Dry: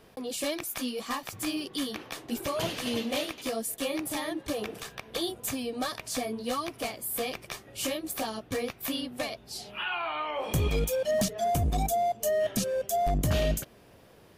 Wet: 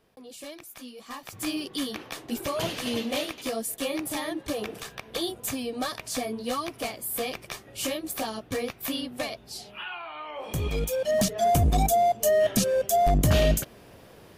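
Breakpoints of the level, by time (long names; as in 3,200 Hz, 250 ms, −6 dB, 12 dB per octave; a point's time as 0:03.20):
0:00.99 −10 dB
0:01.46 +1.5 dB
0:09.46 +1.5 dB
0:10.08 −7 dB
0:11.47 +5.5 dB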